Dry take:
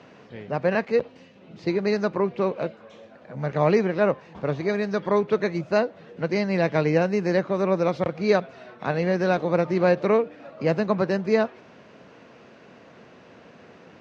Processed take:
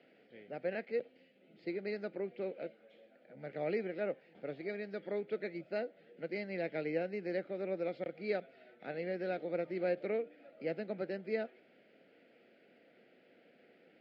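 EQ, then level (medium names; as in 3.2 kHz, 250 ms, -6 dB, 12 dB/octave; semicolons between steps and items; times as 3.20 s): cabinet simulation 400–5800 Hz, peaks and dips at 420 Hz -4 dB, 620 Hz -3 dB, 940 Hz -9 dB, 1.7 kHz -6 dB, 2.7 kHz -8 dB, 3.8 kHz -8 dB; static phaser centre 2.6 kHz, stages 4; -6.5 dB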